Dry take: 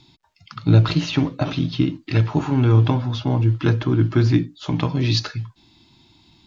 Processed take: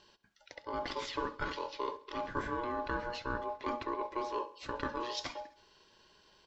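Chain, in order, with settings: low shelf 390 Hz -8.5 dB; reverse; compressor 6:1, threshold -28 dBFS, peak gain reduction 13 dB; reverse; short-mantissa float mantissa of 8-bit; small resonant body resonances 420/750 Hz, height 15 dB, ringing for 45 ms; ring modulator 720 Hz; on a send: feedback echo 67 ms, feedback 56%, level -19 dB; on the sum: gain -6 dB

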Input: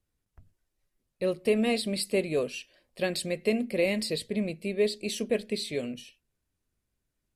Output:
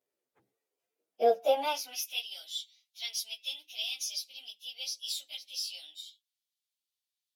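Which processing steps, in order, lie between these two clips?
pitch shift by moving bins +4 st; high-pass sweep 430 Hz -> 3700 Hz, 1.27–2.28

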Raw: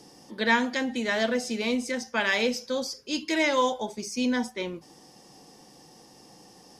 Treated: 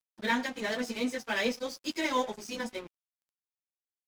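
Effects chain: echo 0.162 s -20 dB; plain phase-vocoder stretch 0.6×; crossover distortion -44 dBFS

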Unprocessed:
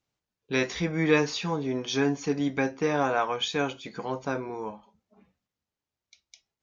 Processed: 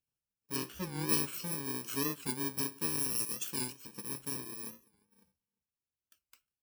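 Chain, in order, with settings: FFT order left unsorted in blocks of 64 samples; 0.56–1.09 high shelf 5500 Hz -8.5 dB; outdoor echo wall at 60 m, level -26 dB; record warp 45 rpm, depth 160 cents; gain -8.5 dB

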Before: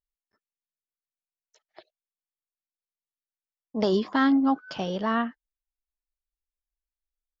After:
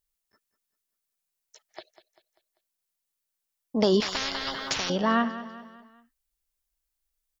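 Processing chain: in parallel at -0.5 dB: compressor, threshold -34 dBFS, peak gain reduction 15 dB; on the sum: high shelf 5100 Hz +8.5 dB; feedback echo 0.196 s, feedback 46%, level -14 dB; 4–4.9 spectral compressor 10:1

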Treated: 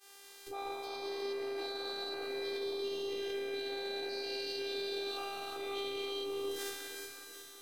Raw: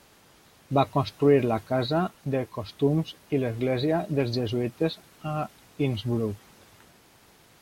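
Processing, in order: spectral dilation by 0.48 s; expander -40 dBFS; high shelf 2100 Hz +10 dB; negative-ratio compressor -28 dBFS, ratio -1; limiter -25 dBFS, peak gain reduction 14 dB; soft clip -26 dBFS, distortion -21 dB; Chebyshev high-pass 360 Hz, order 2; robotiser 396 Hz; on a send: echo with dull and thin repeats by turns 0.183 s, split 1700 Hz, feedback 74%, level -4 dB; on the sum: gain -2 dB

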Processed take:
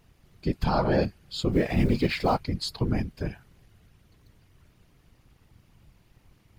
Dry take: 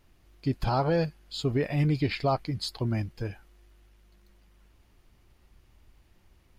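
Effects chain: 1.52–2.38 G.711 law mismatch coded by mu; whisperiser; gain +2 dB

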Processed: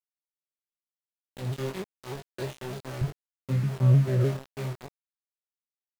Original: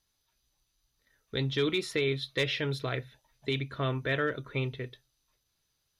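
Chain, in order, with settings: chord vocoder bare fifth, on C3; 1.91–2.35 fade in equal-power; 3.01–4.37 tilt -4.5 dB/oct; early reflections 63 ms -12.5 dB, 75 ms -14 dB; sample gate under -30.5 dBFS; chorus 2.2 Hz, delay 20 ms, depth 3.9 ms; shaped vibrato saw down 3.3 Hz, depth 100 cents

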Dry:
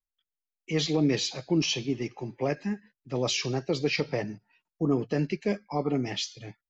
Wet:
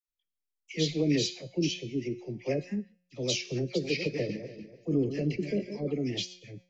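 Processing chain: 3.54–5.79 regenerating reverse delay 0.146 s, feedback 48%, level -8 dB; band shelf 1100 Hz -15.5 dB 1.3 oct; resonator 180 Hz, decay 0.75 s, harmonics all, mix 60%; dispersion lows, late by 70 ms, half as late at 1000 Hz; rotary speaker horn 0.7 Hz, later 7 Hz, at 2.92; gain +6.5 dB

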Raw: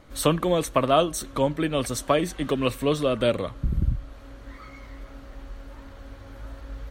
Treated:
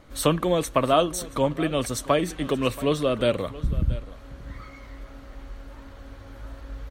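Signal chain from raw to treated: echo 0.678 s -18 dB

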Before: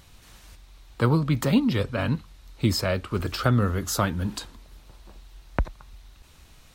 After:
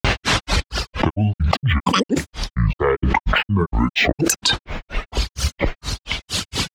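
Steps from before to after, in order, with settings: HPF 82 Hz 12 dB/oct; reverb removal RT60 1.8 s; LPF 5600 Hz 12 dB/oct; grains 0.176 s, grains 4.3/s, pitch spread up and down by 12 st; fast leveller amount 100%; gain +3.5 dB

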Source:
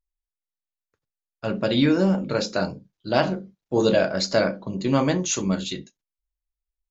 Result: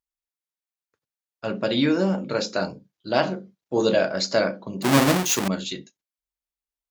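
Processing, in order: 4.82–5.48 half-waves squared off; HPF 200 Hz 6 dB/oct

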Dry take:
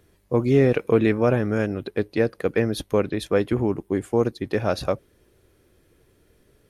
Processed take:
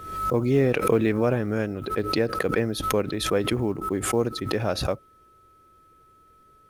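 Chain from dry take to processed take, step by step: whine 1300 Hz -51 dBFS; companded quantiser 8-bit; backwards sustainer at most 61 dB/s; gain -3.5 dB

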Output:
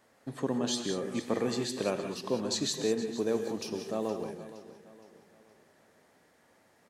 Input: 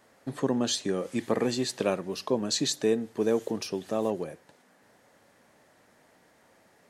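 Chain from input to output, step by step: feedback echo 0.467 s, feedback 42%, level -15 dB; non-linear reverb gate 0.21 s rising, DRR 6 dB; gain -4.5 dB

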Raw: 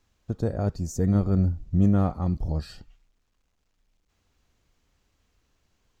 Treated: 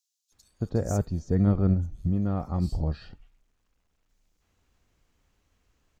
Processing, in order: 1.41–2.3 compressor, threshold -22 dBFS, peak gain reduction 7.5 dB; bands offset in time highs, lows 0.32 s, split 4400 Hz

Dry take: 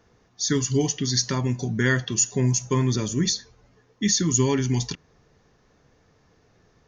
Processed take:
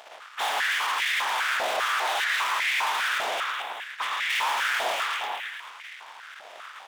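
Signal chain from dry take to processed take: spectral contrast lowered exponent 0.14; soft clip -21 dBFS, distortion -11 dB; downsampling 8000 Hz; 3.18–4.3 compressor 10:1, threshold -45 dBFS, peak gain reduction 18.5 dB; echo with dull and thin repeats by turns 0.109 s, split 2000 Hz, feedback 60%, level -4.5 dB; limiter -28 dBFS, peak gain reduction 10 dB; sample leveller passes 5; 2–2.44 frequency shift +250 Hz; stepped high-pass 5 Hz 670–2000 Hz

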